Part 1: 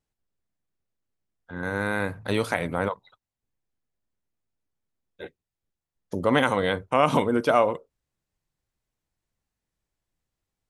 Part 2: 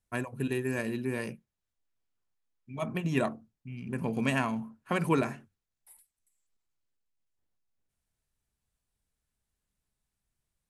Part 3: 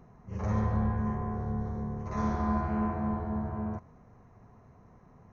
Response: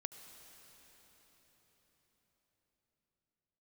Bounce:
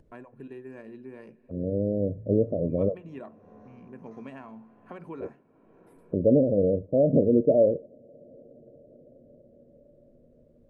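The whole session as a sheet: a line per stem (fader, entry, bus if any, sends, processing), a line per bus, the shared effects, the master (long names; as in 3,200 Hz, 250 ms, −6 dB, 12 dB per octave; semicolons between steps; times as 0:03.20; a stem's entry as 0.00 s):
+2.5 dB, 0.00 s, send −19.5 dB, Butterworth low-pass 630 Hz 96 dB per octave
−7.5 dB, 0.00 s, send −12 dB, low-shelf EQ 220 Hz −9.5 dB; downward compressor 3 to 1, threshold −29 dBFS, peak gain reduction 5 dB; resonant band-pass 330 Hz, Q 0.52
−11.5 dB, 2.00 s, no send, Butterworth high-pass 220 Hz 96 dB per octave; downward compressor 5 to 1, threshold −44 dBFS, peak gain reduction 14 dB; automatic ducking −19 dB, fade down 1.15 s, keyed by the first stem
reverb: on, RT60 5.2 s, pre-delay 68 ms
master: upward compression, threshold −42 dBFS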